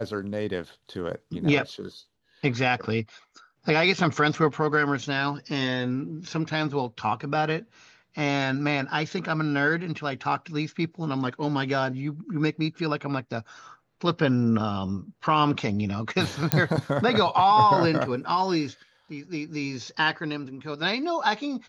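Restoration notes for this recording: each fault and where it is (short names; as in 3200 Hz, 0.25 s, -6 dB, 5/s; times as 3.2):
16.52 pop -2 dBFS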